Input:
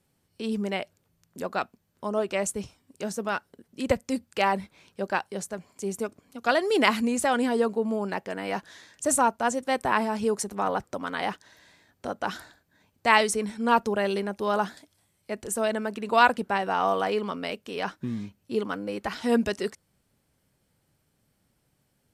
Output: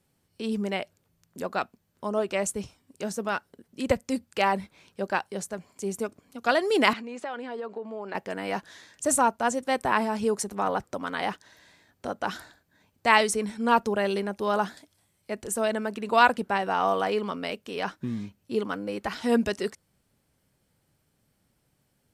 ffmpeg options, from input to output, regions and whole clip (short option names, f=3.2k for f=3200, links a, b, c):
-filter_complex "[0:a]asettb=1/sr,asplit=3[a][b][c];[a]atrim=end=6.934[d];[b]atrim=start=6.93:end=8.15,asetpts=PTS-STARTPTS,afade=t=in:d=0.004:c=qsin,afade=t=out:st=1.216:d=0.004:c=qsin,acompressor=threshold=-28dB:ratio=12:attack=3.2:release=140:knee=1:detection=peak,highpass=350,lowpass=3.5k[e];[c]atrim=start=8.146[f];[d][e]acrossfade=d=0.004:c1=hsin:c2=qsin[g];[g][f]acrossfade=d=0.004:c1=qsin:c2=hsin"